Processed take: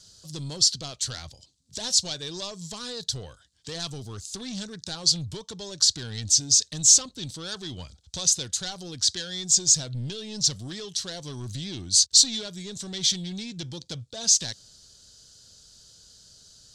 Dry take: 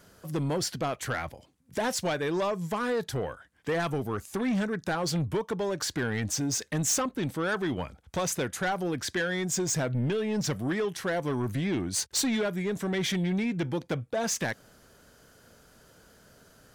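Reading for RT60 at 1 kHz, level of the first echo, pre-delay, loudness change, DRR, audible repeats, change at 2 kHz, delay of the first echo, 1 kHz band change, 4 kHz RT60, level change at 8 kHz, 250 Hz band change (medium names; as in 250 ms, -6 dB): no reverb, no echo, no reverb, +7.0 dB, no reverb, no echo, -10.5 dB, no echo, -12.0 dB, no reverb, +11.5 dB, -8.0 dB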